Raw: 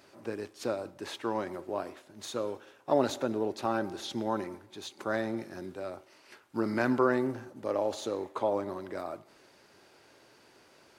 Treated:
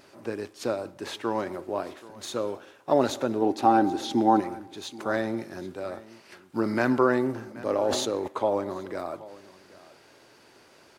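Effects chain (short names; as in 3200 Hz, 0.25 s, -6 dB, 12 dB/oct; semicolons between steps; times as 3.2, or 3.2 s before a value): 3.41–4.39 small resonant body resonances 290/770 Hz, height 12 dB -> 15 dB, ringing for 45 ms; vibrato 1.5 Hz 9.9 cents; echo 0.778 s -19.5 dB; 7.54–8.28 sustainer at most 37 dB/s; gain +4 dB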